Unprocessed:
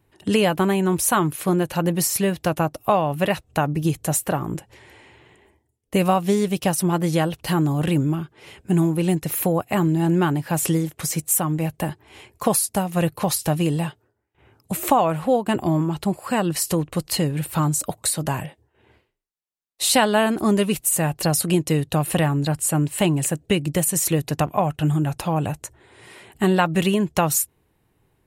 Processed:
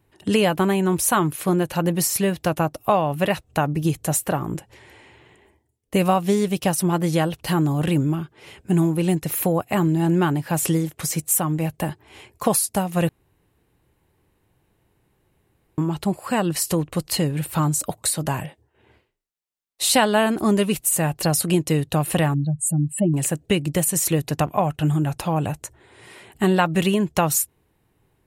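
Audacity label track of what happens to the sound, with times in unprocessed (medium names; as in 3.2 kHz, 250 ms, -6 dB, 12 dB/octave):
13.090000	15.780000	room tone
22.340000	23.140000	spectral contrast enhancement exponent 2.5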